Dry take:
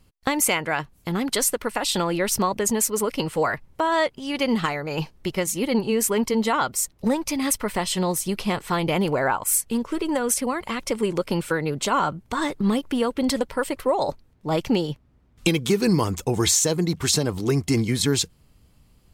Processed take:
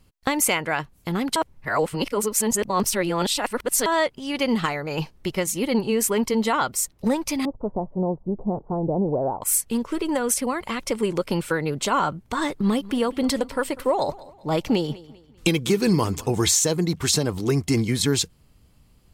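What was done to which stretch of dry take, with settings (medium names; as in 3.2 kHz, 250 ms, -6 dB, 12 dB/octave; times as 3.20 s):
1.36–3.86 s: reverse
7.45–9.42 s: steep low-pass 820 Hz
12.55–16.46 s: feedback delay 197 ms, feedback 36%, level -19.5 dB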